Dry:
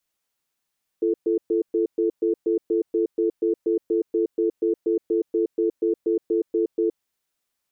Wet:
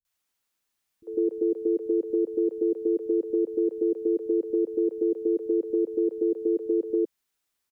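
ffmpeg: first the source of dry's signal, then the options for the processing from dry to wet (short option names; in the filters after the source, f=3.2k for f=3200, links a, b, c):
-f lavfi -i "aevalsrc='0.0891*(sin(2*PI*340*t)+sin(2*PI*440*t))*clip(min(mod(t,0.24),0.12-mod(t,0.24))/0.005,0,1)':d=5.91:s=44100"
-filter_complex "[0:a]acrossover=split=150|570[a][b][c];[c]adelay=50[d];[b]adelay=150[e];[a][e][d]amix=inputs=3:normalize=0"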